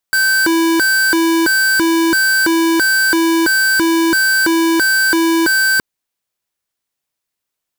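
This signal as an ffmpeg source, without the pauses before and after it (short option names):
-f lavfi -i "aevalsrc='0.224*(2*lt(mod((940*t+610/1.5*(0.5-abs(mod(1.5*t,1)-0.5))),1),0.5)-1)':d=5.67:s=44100"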